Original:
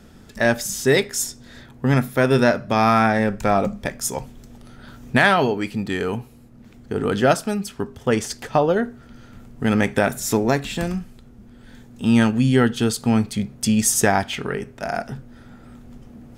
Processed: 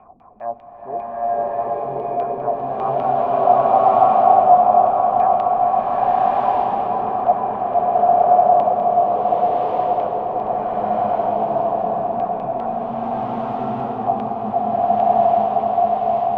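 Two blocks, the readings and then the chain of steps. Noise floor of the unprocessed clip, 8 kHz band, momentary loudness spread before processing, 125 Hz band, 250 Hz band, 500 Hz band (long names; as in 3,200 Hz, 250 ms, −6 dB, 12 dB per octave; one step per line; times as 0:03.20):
−47 dBFS, below −40 dB, 11 LU, −11.5 dB, −9.5 dB, +4.5 dB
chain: converter with a step at zero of −26.5 dBFS
formant resonators in series a
auto-filter low-pass saw down 5 Hz 210–3,000 Hz
on a send: echo whose low-pass opens from repeat to repeat 467 ms, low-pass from 750 Hz, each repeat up 1 octave, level −3 dB
on the sum: slow-attack reverb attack 1,200 ms, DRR −10.5 dB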